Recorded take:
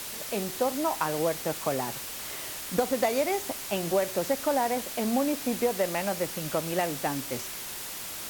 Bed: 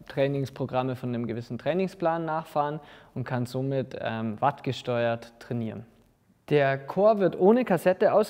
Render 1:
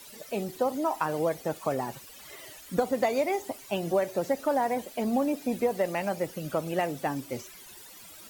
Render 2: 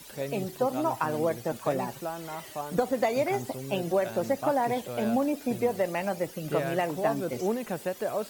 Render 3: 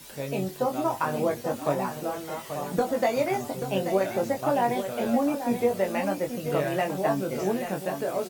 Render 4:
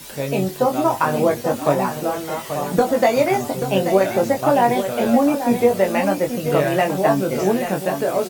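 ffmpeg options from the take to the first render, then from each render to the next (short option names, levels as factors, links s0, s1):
-af "afftdn=nr=15:nf=-38"
-filter_complex "[1:a]volume=0.335[s0];[0:a][s0]amix=inputs=2:normalize=0"
-filter_complex "[0:a]asplit=2[s0][s1];[s1]adelay=21,volume=0.631[s2];[s0][s2]amix=inputs=2:normalize=0,asplit=2[s3][s4];[s4]aecho=0:1:834:0.355[s5];[s3][s5]amix=inputs=2:normalize=0"
-af "volume=2.66"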